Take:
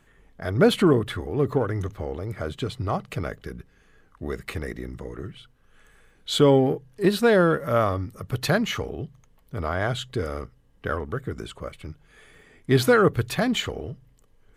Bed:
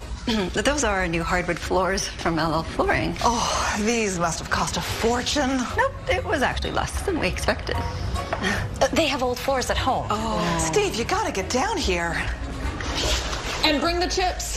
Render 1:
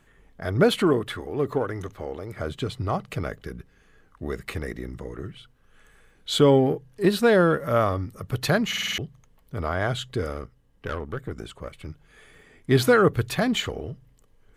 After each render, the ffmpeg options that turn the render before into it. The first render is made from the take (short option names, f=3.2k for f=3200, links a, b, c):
-filter_complex "[0:a]asettb=1/sr,asplit=3[a][b][c];[a]atrim=end=0.634[d];[b]atrim=start=0.63:end=2.36,asetpts=PTS-STARTPTS,afade=t=in:d=0.004:c=qsin,afade=t=out:st=1.726:d=0.004:c=qsin,equalizer=f=68:w=0.36:g=-8[e];[c]atrim=start=2.356[f];[d][e]acrossfade=d=0.004:c1=hsin:c2=qsin[g];[g][f]acrossfade=d=0.004:c1=qsin:c2=hsin,asettb=1/sr,asplit=3[h][i][j];[h]atrim=end=10.324[k];[i]atrim=start=10.32:end=11.77,asetpts=PTS-STARTPTS,afade=t=in:d=0.004:c=qsin,afade=t=out:st=1.446:d=0.004:c=qsin,aeval=exprs='(tanh(14.1*val(0)+0.55)-tanh(0.55))/14.1':c=same[l];[j]atrim=start=11.766[m];[k][l]acrossfade=d=0.004:c1=hsin:c2=qsin[n];[n][m]acrossfade=d=0.004:c1=qsin:c2=hsin,asplit=7[o][p][q][r][s][t][u];[o]atrim=end=8.732[v];[p]atrim=start=8.678:end=8.732[w];[q]atrim=start=8.678:end=8.732[x];[r]atrim=start=8.678:end=8.732[y];[s]atrim=start=8.678:end=8.732[z];[t]atrim=start=8.678:end=8.732[aa];[u]atrim=start=8.978[ab];[v][w]acrossfade=d=0.004:c1=hsin:c2=hsin[ac];[ac][x]acrossfade=d=0.004:c1=hsin:c2=hsin[ad];[ad][y]acrossfade=d=0.004:c1=hsin:c2=hsin[ae];[ae][z]acrossfade=d=0.004:c1=hsin:c2=hsin[af];[af][aa]acrossfade=d=0.004:c1=hsin:c2=hsin[ag];[ag][ab]acrossfade=d=0.004:c1=hsin:c2=hsin"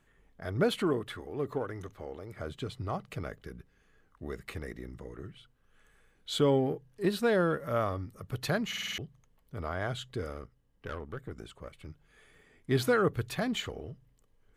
-af "volume=-8.5dB"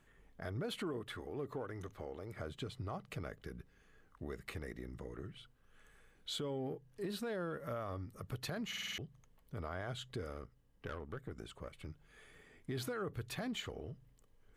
-af "alimiter=level_in=0.5dB:limit=-24dB:level=0:latency=1:release=18,volume=-0.5dB,acompressor=threshold=-44dB:ratio=2"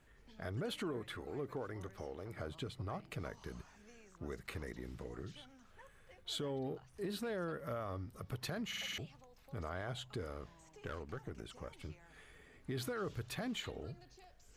-filter_complex "[1:a]volume=-39dB[a];[0:a][a]amix=inputs=2:normalize=0"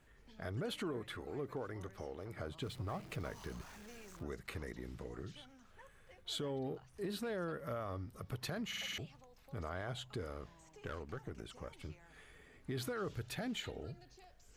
-filter_complex "[0:a]asettb=1/sr,asplit=3[a][b][c];[a]atrim=end=2.624[d];[b]atrim=start=2.62:end=4.23,asetpts=PTS-STARTPTS,afade=t=in:d=0.004:c=qsin,afade=t=out:st=1.606:d=0.004:c=qsin,aeval=exprs='val(0)+0.5*0.00251*sgn(val(0))':c=same[e];[c]atrim=start=4.226[f];[d][e]acrossfade=d=0.004:c1=hsin:c2=qsin[g];[g][f]acrossfade=d=0.004:c1=qsin:c2=hsin,asettb=1/sr,asplit=3[h][i][j];[h]atrim=end=13.184[k];[i]atrim=start=13.18:end=14.08,asetpts=PTS-STARTPTS,afade=t=in:d=0.004:c=qsin,afade=t=out:st=0.896:d=0.004:c=qsin,asuperstop=centerf=1100:order=4:qfactor=5.8[l];[j]atrim=start=14.076[m];[k][l]acrossfade=d=0.004:c1=hsin:c2=qsin[n];[n][m]acrossfade=d=0.004:c1=qsin:c2=hsin"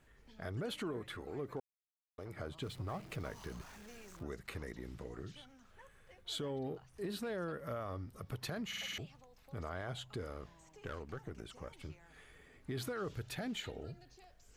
-filter_complex "[0:a]asplit=3[a][b][c];[a]atrim=end=1.6,asetpts=PTS-STARTPTS,afade=t=out:st=1.596:d=0.004:c=hsin[d];[b]atrim=start=1.6:end=2.18,asetpts=PTS-STARTPTS,volume=0[e];[c]atrim=start=2.18,asetpts=PTS-STARTPTS,afade=t=in:d=0.004:c=hsin[f];[d][e][f]concat=n=3:v=0:a=1"